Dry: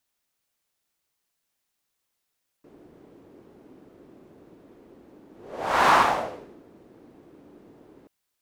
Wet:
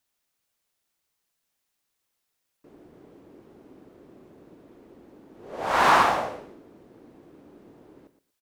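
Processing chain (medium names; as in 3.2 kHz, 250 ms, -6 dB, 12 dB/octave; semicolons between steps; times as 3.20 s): feedback delay 117 ms, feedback 18%, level -12.5 dB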